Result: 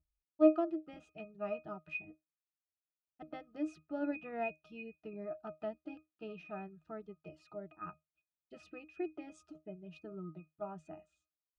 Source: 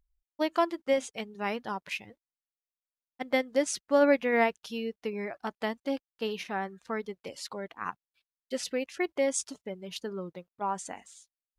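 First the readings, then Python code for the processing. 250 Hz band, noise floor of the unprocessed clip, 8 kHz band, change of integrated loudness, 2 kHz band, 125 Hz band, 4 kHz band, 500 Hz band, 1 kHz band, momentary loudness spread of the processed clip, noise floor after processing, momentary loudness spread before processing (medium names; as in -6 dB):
-5.0 dB, under -85 dBFS, under -30 dB, -8.0 dB, -14.5 dB, no reading, -24.0 dB, -9.5 dB, -13.5 dB, 15 LU, under -85 dBFS, 14 LU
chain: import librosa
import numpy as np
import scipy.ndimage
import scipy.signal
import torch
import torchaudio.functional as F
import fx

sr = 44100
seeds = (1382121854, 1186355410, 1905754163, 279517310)

y = fx.octave_resonator(x, sr, note='D#', decay_s=0.18)
y = y * librosa.db_to_amplitude(7.0)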